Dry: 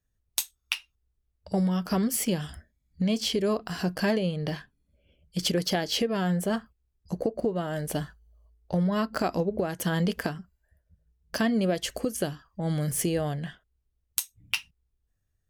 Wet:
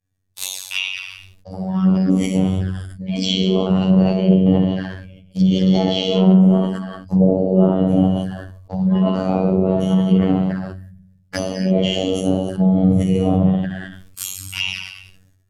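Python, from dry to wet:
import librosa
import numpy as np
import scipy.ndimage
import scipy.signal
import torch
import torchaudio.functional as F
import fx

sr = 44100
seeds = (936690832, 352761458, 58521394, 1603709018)

y = fx.spec_trails(x, sr, decay_s=0.35)
y = fx.noise_reduce_blind(y, sr, reduce_db=8)
y = fx.over_compress(y, sr, threshold_db=-28.0, ratio=-0.5)
y = fx.low_shelf(y, sr, hz=210.0, db=-2.5)
y = fx.rev_gated(y, sr, seeds[0], gate_ms=370, shape='falling', drr_db=-6.0)
y = fx.env_flanger(y, sr, rest_ms=8.1, full_db=-23.0)
y = fx.robotise(y, sr, hz=94.1)
y = fx.peak_eq(y, sr, hz=130.0, db=10.5, octaves=2.1)
y = fx.env_lowpass_down(y, sr, base_hz=1900.0, full_db=-16.0)
y = fx.sustainer(y, sr, db_per_s=51.0)
y = F.gain(torch.from_numpy(y), 5.5).numpy()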